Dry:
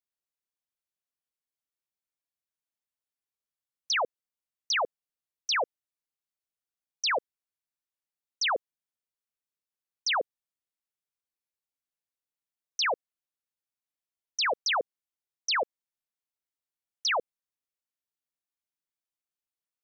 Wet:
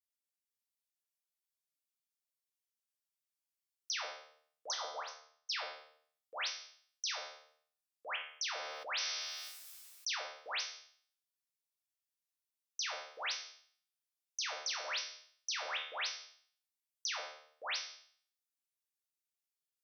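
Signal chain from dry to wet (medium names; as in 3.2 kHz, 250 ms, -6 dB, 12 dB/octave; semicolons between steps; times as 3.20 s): chunks repeated in reverse 544 ms, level -3.5 dB; 4.74–5.50 s: resonant high shelf 1.6 kHz -14 dB, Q 1.5; wow and flutter 30 cents; differentiator; feedback comb 76 Hz, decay 0.53 s, harmonics all, mix 80%; compression, threshold -46 dBFS, peak gain reduction 9 dB; low-pass 3.9 kHz 6 dB/octave; simulated room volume 58 m³, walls mixed, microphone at 0.52 m; 8.53–10.15 s: decay stretcher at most 23 dB/s; trim +12.5 dB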